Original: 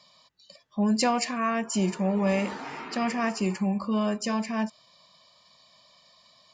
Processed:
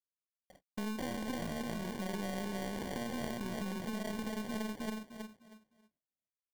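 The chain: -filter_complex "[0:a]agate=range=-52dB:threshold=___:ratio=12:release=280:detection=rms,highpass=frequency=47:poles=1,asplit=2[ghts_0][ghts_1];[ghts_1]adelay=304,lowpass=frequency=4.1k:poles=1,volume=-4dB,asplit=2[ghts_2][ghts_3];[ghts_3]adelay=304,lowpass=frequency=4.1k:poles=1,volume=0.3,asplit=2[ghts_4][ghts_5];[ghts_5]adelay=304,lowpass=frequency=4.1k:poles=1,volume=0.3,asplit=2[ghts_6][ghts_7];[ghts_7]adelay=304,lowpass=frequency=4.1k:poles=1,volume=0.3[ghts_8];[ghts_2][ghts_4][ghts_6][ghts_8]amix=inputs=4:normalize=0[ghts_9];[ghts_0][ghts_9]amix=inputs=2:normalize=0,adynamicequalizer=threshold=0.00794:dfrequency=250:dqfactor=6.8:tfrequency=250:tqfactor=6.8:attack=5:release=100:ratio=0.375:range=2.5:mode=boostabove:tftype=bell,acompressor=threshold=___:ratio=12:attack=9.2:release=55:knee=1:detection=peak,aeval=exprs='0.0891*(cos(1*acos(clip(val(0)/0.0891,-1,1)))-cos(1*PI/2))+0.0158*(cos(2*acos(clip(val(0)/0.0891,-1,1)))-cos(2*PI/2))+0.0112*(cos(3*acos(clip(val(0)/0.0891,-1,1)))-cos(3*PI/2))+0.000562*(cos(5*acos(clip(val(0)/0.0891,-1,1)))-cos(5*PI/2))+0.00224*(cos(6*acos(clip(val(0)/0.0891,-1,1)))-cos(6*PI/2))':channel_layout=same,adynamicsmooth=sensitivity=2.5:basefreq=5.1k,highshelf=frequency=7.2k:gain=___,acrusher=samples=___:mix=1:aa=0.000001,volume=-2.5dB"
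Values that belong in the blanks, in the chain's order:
-48dB, -32dB, 6, 34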